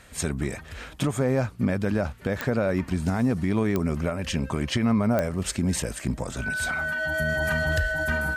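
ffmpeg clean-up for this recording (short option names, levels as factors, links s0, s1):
-af "adeclick=t=4,bandreject=f=1500:w=30"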